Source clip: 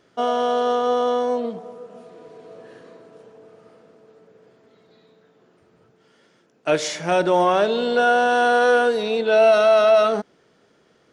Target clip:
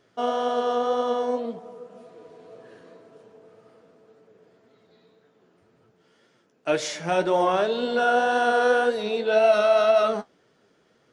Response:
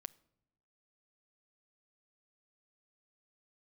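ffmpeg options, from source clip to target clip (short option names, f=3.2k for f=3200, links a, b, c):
-af "flanger=delay=6.9:depth=5.8:regen=52:speed=1.9:shape=triangular"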